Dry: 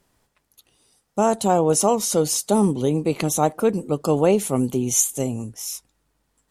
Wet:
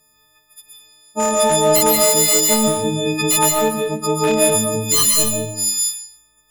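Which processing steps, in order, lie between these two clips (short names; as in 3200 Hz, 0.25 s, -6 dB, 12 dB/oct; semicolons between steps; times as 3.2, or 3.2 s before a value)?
frequency quantiser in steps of 6 st; wavefolder -8.5 dBFS; reverb RT60 0.60 s, pre-delay 0.1 s, DRR 0.5 dB; gain -1.5 dB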